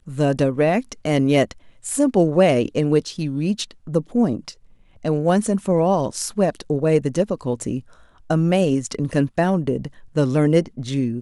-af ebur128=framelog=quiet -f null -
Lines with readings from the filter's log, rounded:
Integrated loudness:
  I:         -20.6 LUFS
  Threshold: -30.8 LUFS
Loudness range:
  LRA:         2.5 LU
  Threshold: -41.1 LUFS
  LRA low:   -22.0 LUFS
  LRA high:  -19.5 LUFS